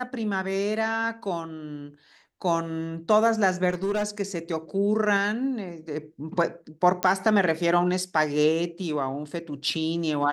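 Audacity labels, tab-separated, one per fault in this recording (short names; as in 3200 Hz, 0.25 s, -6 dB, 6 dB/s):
3.690000	4.070000	clipped -22 dBFS
7.030000	7.030000	pop -8 dBFS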